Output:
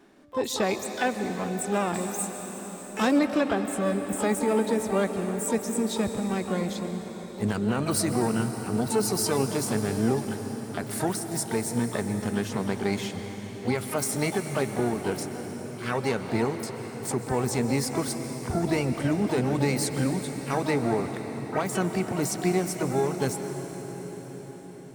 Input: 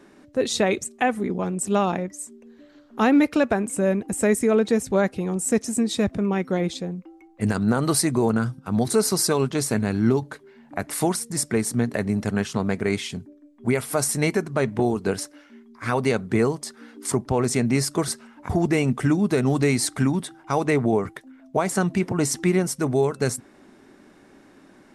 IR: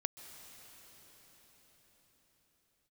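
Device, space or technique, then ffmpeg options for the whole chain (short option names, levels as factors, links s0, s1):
shimmer-style reverb: -filter_complex "[0:a]asplit=2[s0][s1];[s1]asetrate=88200,aresample=44100,atempo=0.5,volume=0.355[s2];[s0][s2]amix=inputs=2:normalize=0[s3];[1:a]atrim=start_sample=2205[s4];[s3][s4]afir=irnorm=-1:irlink=0,asettb=1/sr,asplit=3[s5][s6][s7];[s5]atrim=end=1.944[s8];[s6]atrim=start=1.94:end=3.19,asetpts=PTS-STARTPTS,afade=t=in:d=0.004:c=qsin,afade=t=out:st=1.246:d=0.004:c=qsin,bass=f=250:g=1,treble=f=4000:g=9[s9];[s7]atrim=start=3.186[s10];[s8][s9]acrossfade=d=0.004:c1=hsin:c2=qsin[s11];[s11][s10]acrossfade=d=0.004:c1=qsin:c2=hsin,volume=0.596"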